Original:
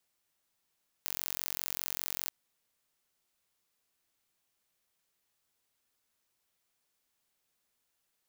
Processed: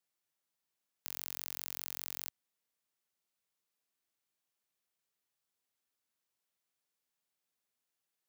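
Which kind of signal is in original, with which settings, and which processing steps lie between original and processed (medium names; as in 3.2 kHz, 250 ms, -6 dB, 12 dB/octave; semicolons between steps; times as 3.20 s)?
pulse train 45 per s, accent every 0, -7.5 dBFS 1.24 s
high-pass 100 Hz; level held to a coarse grid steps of 11 dB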